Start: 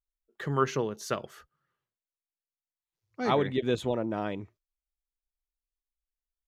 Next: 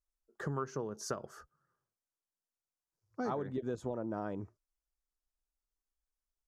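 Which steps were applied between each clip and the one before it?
Bessel low-pass filter 8,700 Hz
flat-topped bell 2,800 Hz −14.5 dB 1.3 octaves
downward compressor, threshold −35 dBFS, peak gain reduction 14.5 dB
level +1 dB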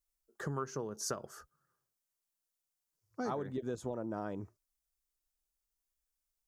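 high-shelf EQ 5,300 Hz +10 dB
level −1 dB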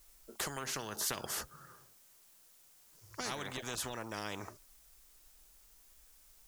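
every bin compressed towards the loudest bin 4 to 1
level +5.5 dB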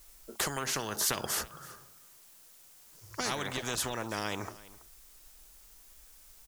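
single-tap delay 329 ms −19.5 dB
level +6 dB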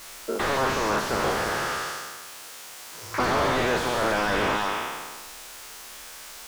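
peak hold with a decay on every bin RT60 1.53 s
mid-hump overdrive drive 28 dB, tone 2,800 Hz, clips at −9.5 dBFS
slew-rate limiting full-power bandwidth 99 Hz

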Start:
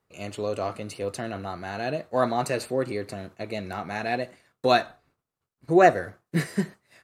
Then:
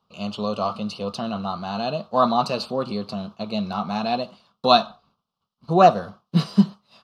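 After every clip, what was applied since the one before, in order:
drawn EQ curve 130 Hz 0 dB, 210 Hz +14 dB, 300 Hz −5 dB, 1,200 Hz +12 dB, 1,900 Hz −16 dB, 3,000 Hz +11 dB, 5,100 Hz +9 dB, 7,500 Hz −9 dB
level −1 dB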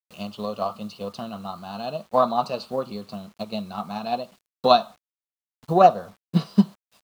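bit reduction 8 bits
transient designer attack +7 dB, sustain 0 dB
dynamic equaliser 630 Hz, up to +5 dB, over −25 dBFS, Q 0.97
level −8 dB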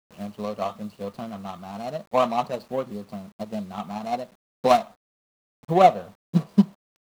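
running median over 25 samples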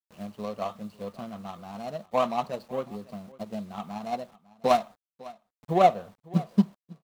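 single-tap delay 552 ms −21 dB
level −4 dB

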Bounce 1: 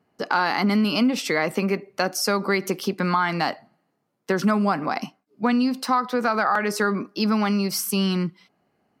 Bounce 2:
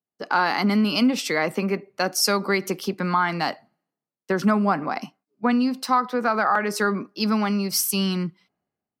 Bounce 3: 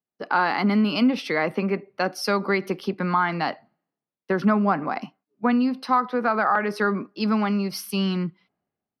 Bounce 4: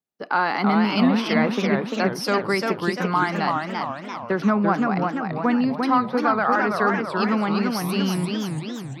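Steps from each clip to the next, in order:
multiband upward and downward expander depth 70%
moving average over 6 samples
feedback echo with a swinging delay time 340 ms, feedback 54%, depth 219 cents, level −3.5 dB

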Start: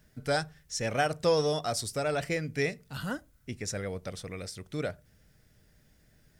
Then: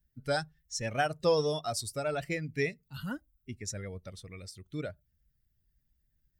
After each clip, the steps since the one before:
spectral dynamics exaggerated over time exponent 1.5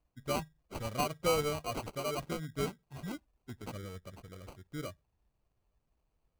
decimation without filtering 25×
level −3.5 dB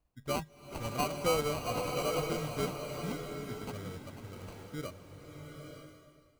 slow-attack reverb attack 890 ms, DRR 3 dB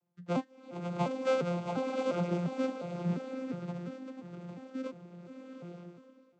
vocoder with an arpeggio as carrier bare fifth, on F3, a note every 351 ms
level +2.5 dB

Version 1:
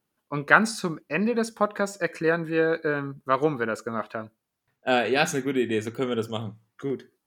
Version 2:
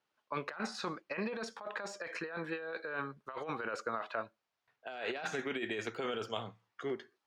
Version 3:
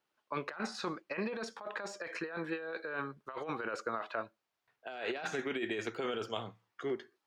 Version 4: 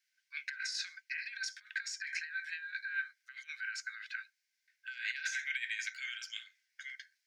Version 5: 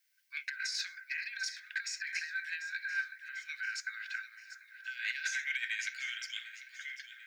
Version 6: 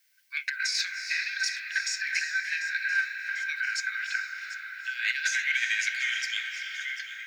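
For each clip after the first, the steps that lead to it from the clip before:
de-essing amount 80%; three-way crossover with the lows and the highs turned down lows −15 dB, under 490 Hz, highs −22 dB, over 6,000 Hz; compressor whose output falls as the input rises −34 dBFS, ratio −1; level −4.5 dB
parametric band 340 Hz +3.5 dB 0.44 octaves
Chebyshev high-pass with heavy ripple 1,500 Hz, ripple 9 dB; level +9.5 dB
delay that swaps between a low-pass and a high-pass 372 ms, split 1,900 Hz, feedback 75%, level −11.5 dB; in parallel at −11.5 dB: hard clipping −33.5 dBFS, distortion −14 dB; on the sum: background noise violet −78 dBFS
convolution reverb RT60 4.5 s, pre-delay 262 ms, DRR 4 dB; level +8 dB

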